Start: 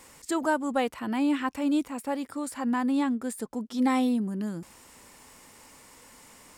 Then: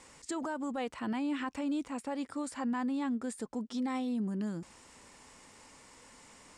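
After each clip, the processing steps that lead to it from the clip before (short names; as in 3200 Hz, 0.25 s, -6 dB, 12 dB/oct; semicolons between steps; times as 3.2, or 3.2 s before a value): LPF 8700 Hz 24 dB/oct; limiter -24.5 dBFS, peak gain reduction 10.5 dB; gain -3 dB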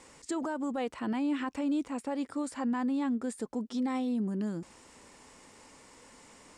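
bell 380 Hz +4 dB 1.7 oct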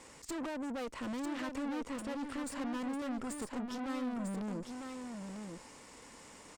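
tube stage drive 41 dB, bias 0.7; echo 0.949 s -6 dB; gain +4 dB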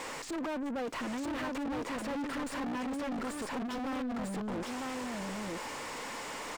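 overdrive pedal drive 35 dB, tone 2300 Hz, clips at -30 dBFS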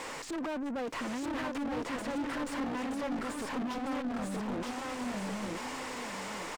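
echo 0.924 s -6.5 dB; Doppler distortion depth 0.16 ms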